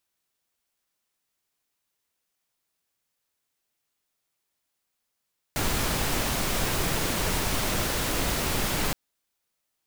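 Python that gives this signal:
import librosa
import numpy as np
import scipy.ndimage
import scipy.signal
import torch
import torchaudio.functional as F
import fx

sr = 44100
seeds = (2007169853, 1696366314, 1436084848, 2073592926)

y = fx.noise_colour(sr, seeds[0], length_s=3.37, colour='pink', level_db=-26.5)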